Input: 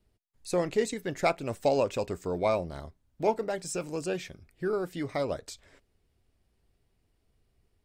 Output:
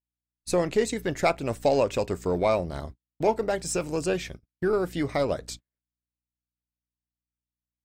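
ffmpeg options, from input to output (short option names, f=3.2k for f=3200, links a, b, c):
-filter_complex "[0:a]aeval=exprs='val(0)+0.00282*(sin(2*PI*60*n/s)+sin(2*PI*2*60*n/s)/2+sin(2*PI*3*60*n/s)/3+sin(2*PI*4*60*n/s)/4+sin(2*PI*5*60*n/s)/5)':c=same,asplit=2[a][b];[b]alimiter=limit=-24dB:level=0:latency=1:release=259,volume=1dB[c];[a][c]amix=inputs=2:normalize=0,aeval=exprs='0.299*(cos(1*acos(clip(val(0)/0.299,-1,1)))-cos(1*PI/2))+0.00266*(cos(7*acos(clip(val(0)/0.299,-1,1)))-cos(7*PI/2))+0.00376*(cos(8*acos(clip(val(0)/0.299,-1,1)))-cos(8*PI/2))':c=same,agate=range=-48dB:threshold=-38dB:ratio=16:detection=peak"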